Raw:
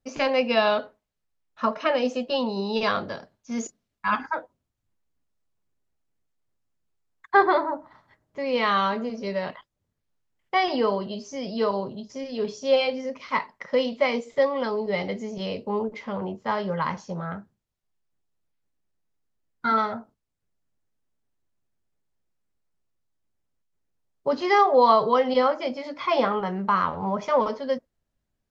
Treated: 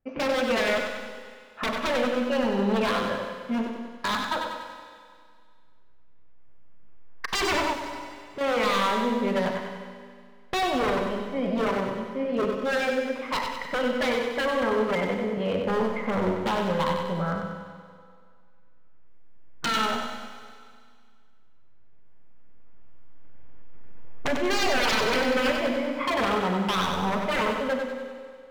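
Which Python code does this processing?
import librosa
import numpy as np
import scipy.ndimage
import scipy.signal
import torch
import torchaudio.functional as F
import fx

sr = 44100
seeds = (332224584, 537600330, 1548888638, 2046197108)

y = fx.recorder_agc(x, sr, target_db=-14.5, rise_db_per_s=6.8, max_gain_db=30)
y = scipy.signal.sosfilt(scipy.signal.butter(4, 2500.0, 'lowpass', fs=sr, output='sos'), y)
y = 10.0 ** (-21.0 / 20.0) * (np.abs((y / 10.0 ** (-21.0 / 20.0) + 3.0) % 4.0 - 2.0) - 1.0)
y = fx.echo_feedback(y, sr, ms=95, feedback_pct=51, wet_db=-5.5)
y = fx.rev_schroeder(y, sr, rt60_s=2.1, comb_ms=33, drr_db=7.0)
y = fx.clip_hard(y, sr, threshold_db=-31.0, at=(7.73, 8.41))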